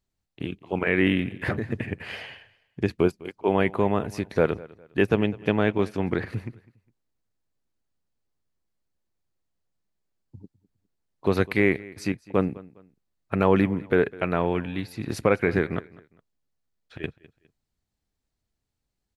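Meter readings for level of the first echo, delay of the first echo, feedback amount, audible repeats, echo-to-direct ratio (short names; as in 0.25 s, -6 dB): -21.0 dB, 0.204 s, 31%, 2, -20.5 dB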